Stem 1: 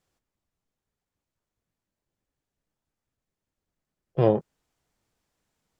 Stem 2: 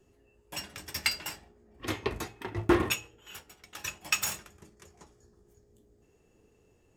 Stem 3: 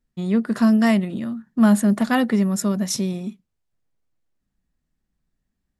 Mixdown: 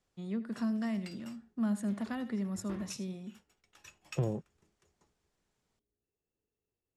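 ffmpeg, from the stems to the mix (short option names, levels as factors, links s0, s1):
-filter_complex "[0:a]acompressor=threshold=0.0708:ratio=2,volume=0.708[s0];[1:a]agate=range=0.355:threshold=0.00126:ratio=16:detection=peak,volume=0.133[s1];[2:a]volume=0.168,asplit=3[s2][s3][s4];[s3]volume=0.168[s5];[s4]apad=whole_len=307188[s6];[s1][s6]sidechaincompress=threshold=0.0158:ratio=8:attack=16:release=371[s7];[s5]aecho=0:1:80:1[s8];[s0][s7][s2][s8]amix=inputs=4:normalize=0,lowpass=10000,acrossover=split=270[s9][s10];[s10]acompressor=threshold=0.0112:ratio=4[s11];[s9][s11]amix=inputs=2:normalize=0"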